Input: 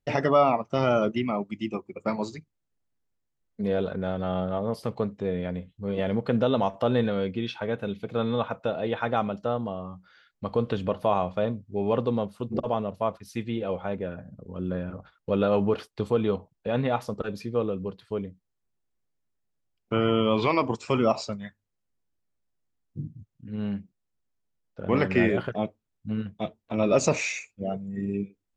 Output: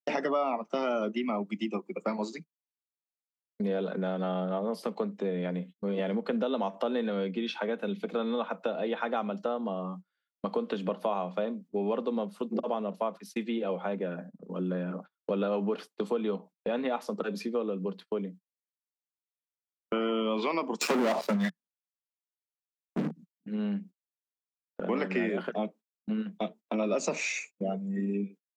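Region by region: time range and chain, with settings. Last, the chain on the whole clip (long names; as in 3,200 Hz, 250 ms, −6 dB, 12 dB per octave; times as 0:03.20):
0:20.81–0:23.11: treble cut that deepens with the level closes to 1,200 Hz, closed at −20 dBFS + leveller curve on the samples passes 5
whole clip: Butterworth high-pass 170 Hz 96 dB per octave; noise gate −45 dBFS, range −31 dB; downward compressor 3 to 1, threshold −33 dBFS; level +3.5 dB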